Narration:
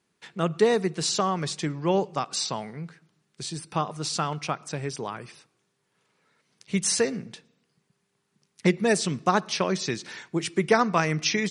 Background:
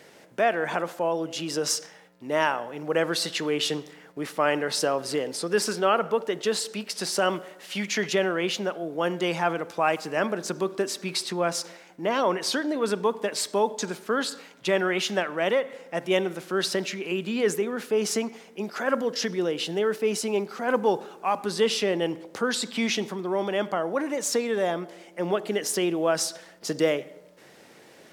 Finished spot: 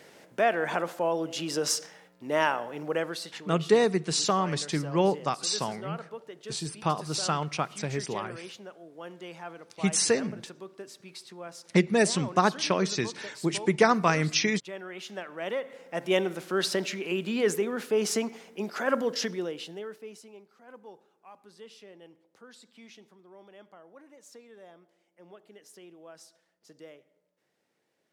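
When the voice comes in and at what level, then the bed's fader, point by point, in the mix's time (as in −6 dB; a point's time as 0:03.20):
3.10 s, −0.5 dB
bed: 0:02.82 −1.5 dB
0:03.46 −16.5 dB
0:14.84 −16.5 dB
0:16.11 −1.5 dB
0:19.17 −1.5 dB
0:20.42 −25.5 dB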